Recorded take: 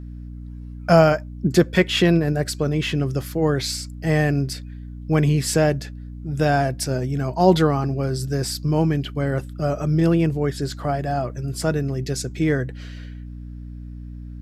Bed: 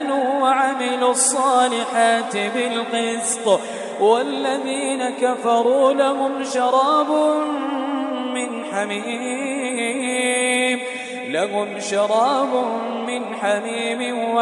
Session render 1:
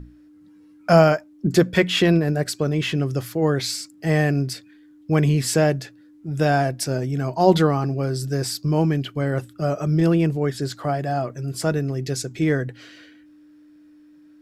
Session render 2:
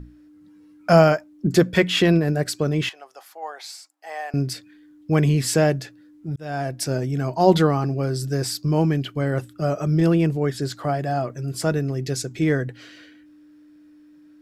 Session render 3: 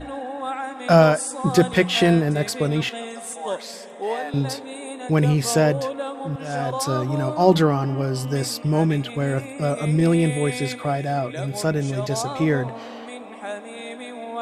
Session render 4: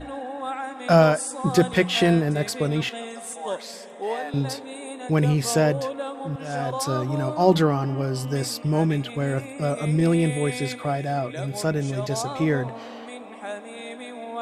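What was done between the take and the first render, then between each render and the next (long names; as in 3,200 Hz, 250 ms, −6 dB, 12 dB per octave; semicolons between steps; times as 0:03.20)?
mains-hum notches 60/120/180/240 Hz
0:02.89–0:04.34: four-pole ladder high-pass 710 Hz, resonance 65%; 0:06.36–0:06.87: fade in
mix in bed −12 dB
level −2 dB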